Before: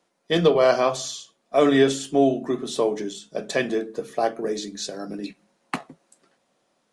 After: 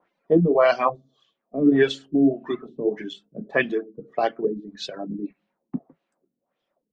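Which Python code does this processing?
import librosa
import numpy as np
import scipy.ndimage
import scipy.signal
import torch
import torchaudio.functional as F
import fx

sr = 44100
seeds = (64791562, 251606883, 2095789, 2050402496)

y = fx.dereverb_blind(x, sr, rt60_s=1.7)
y = fx.filter_lfo_lowpass(y, sr, shape='sine', hz=1.7, low_hz=230.0, high_hz=3300.0, q=2.2)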